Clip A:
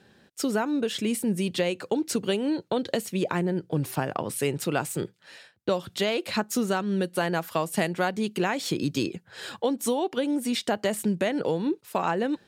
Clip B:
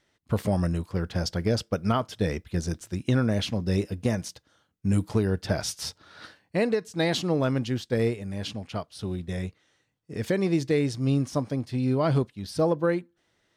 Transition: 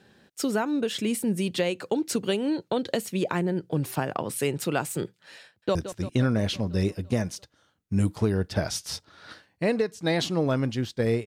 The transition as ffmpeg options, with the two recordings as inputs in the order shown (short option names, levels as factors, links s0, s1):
-filter_complex "[0:a]apad=whole_dur=11.26,atrim=end=11.26,atrim=end=5.752[s0];[1:a]atrim=start=2.678:end=8.19[s1];[s0][s1]acrossfade=d=0.004:c1=hsin:c2=hsin,asplit=2[s2][s3];[s3]afade=t=in:st=5.45:d=0.01,afade=t=out:st=5.75:d=0.01,aecho=0:1:170|340|510|680|850|1020|1190|1360|1530|1700:0.251189|0.175832|0.123082|0.0861577|0.0603104|0.0422173|0.0295521|0.0206865|0.0144805|0.0101364[s4];[s2][s4]amix=inputs=2:normalize=0"